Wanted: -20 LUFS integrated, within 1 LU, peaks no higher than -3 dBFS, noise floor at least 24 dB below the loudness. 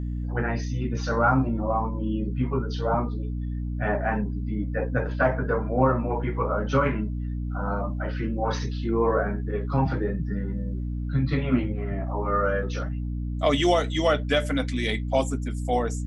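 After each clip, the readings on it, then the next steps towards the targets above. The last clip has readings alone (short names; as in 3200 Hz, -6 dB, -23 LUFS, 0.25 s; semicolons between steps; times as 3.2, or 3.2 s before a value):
hum 60 Hz; harmonics up to 300 Hz; hum level -27 dBFS; loudness -26.5 LUFS; peak -8.5 dBFS; loudness target -20.0 LUFS
-> notches 60/120/180/240/300 Hz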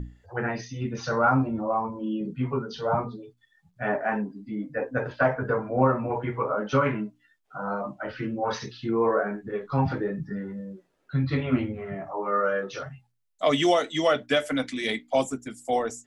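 hum none; loudness -27.5 LUFS; peak -9.5 dBFS; loudness target -20.0 LUFS
-> gain +7.5 dB; limiter -3 dBFS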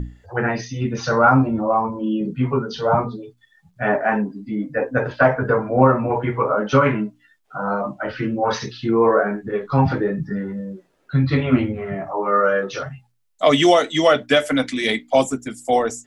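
loudness -20.0 LUFS; peak -3.0 dBFS; noise floor -63 dBFS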